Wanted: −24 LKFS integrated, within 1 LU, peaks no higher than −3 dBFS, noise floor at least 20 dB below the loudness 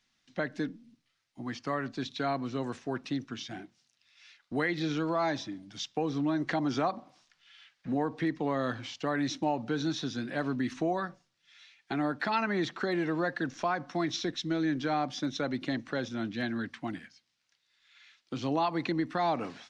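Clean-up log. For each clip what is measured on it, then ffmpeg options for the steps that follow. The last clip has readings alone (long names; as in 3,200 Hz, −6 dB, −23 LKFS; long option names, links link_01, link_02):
integrated loudness −32.5 LKFS; sample peak −16.5 dBFS; target loudness −24.0 LKFS
→ -af "volume=8.5dB"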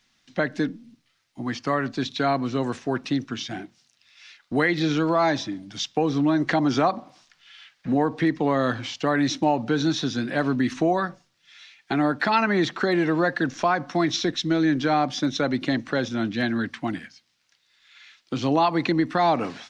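integrated loudness −24.0 LKFS; sample peak −8.0 dBFS; background noise floor −68 dBFS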